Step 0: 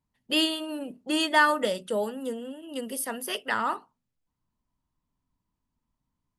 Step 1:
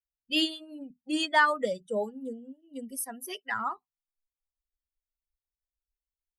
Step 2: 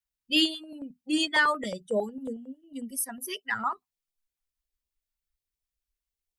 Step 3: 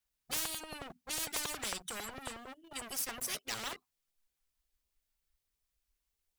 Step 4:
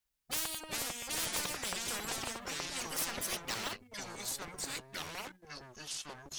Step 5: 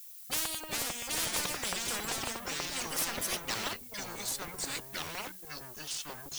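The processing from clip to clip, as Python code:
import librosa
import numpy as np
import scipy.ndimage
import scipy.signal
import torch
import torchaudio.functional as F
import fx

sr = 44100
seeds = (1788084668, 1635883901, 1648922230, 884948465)

y1 = fx.bin_expand(x, sr, power=2.0)
y2 = fx.filter_held_notch(y1, sr, hz=11.0, low_hz=420.0, high_hz=1500.0)
y2 = y2 * 10.0 ** (4.0 / 20.0)
y3 = fx.leveller(y2, sr, passes=2)
y3 = fx.spectral_comp(y3, sr, ratio=10.0)
y3 = y3 * 10.0 ** (-7.5 / 20.0)
y4 = fx.echo_pitch(y3, sr, ms=295, semitones=-5, count=2, db_per_echo=-3.0)
y5 = fx.dmg_noise_colour(y4, sr, seeds[0], colour='violet', level_db=-52.0)
y5 = y5 * 10.0 ** (3.0 / 20.0)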